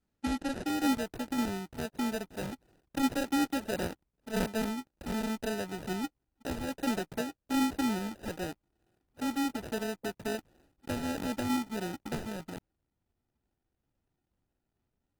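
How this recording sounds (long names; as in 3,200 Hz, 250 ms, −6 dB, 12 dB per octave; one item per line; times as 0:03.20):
aliases and images of a low sample rate 1,100 Hz, jitter 0%
Opus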